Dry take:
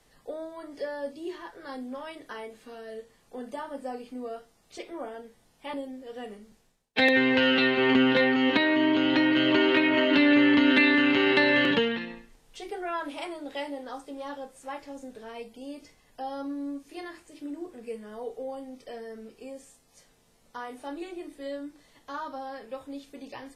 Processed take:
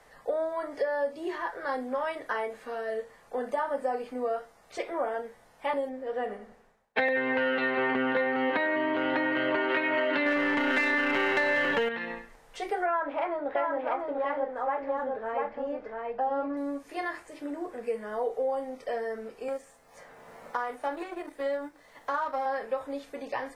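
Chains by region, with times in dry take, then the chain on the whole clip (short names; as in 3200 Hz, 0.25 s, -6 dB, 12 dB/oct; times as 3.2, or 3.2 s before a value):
5.89–9.7 high shelf 3200 Hz -9 dB + feedback echo 96 ms, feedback 43%, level -15.5 dB
10.26–11.89 half-wave gain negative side -3 dB + sample leveller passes 2
12.86–16.57 LPF 1900 Hz + echo 0.693 s -3.5 dB
19.48–22.46 G.711 law mismatch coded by A + three-band squash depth 70%
whole clip: band shelf 1000 Hz +10.5 dB 2.5 oct; compressor 6:1, threshold -25 dBFS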